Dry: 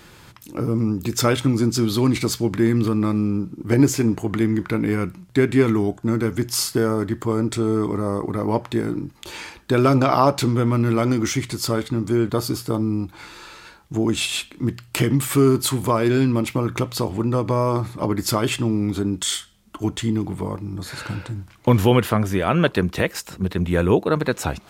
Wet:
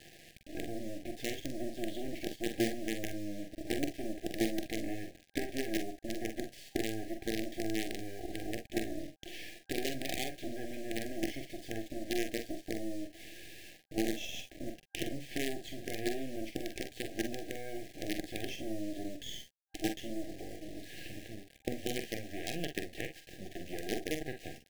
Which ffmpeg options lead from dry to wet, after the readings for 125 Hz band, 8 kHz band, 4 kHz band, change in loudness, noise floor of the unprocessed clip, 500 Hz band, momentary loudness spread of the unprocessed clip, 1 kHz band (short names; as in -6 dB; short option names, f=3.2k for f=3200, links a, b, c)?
-26.5 dB, -16.5 dB, -13.5 dB, -18.0 dB, -48 dBFS, -17.5 dB, 10 LU, -22.0 dB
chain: -filter_complex "[0:a]acompressor=threshold=-31dB:ratio=2.5,highpass=110,equalizer=f=120:t=q:w=4:g=-6,equalizer=f=180:t=q:w=4:g=-5,equalizer=f=330:t=q:w=4:g=10,equalizer=f=610:t=q:w=4:g=-6,equalizer=f=1.2k:t=q:w=4:g=10,equalizer=f=3.1k:t=q:w=4:g=8,lowpass=f=3.3k:w=0.5412,lowpass=f=3.3k:w=1.3066,acrusher=bits=4:dc=4:mix=0:aa=0.000001,asplit=2[a][b];[b]aecho=0:1:45|58:0.422|0.188[c];[a][c]amix=inputs=2:normalize=0,afftfilt=real='re*(1-between(b*sr/4096,790,1600))':imag='im*(1-between(b*sr/4096,790,1600))':win_size=4096:overlap=0.75,volume=-8.5dB"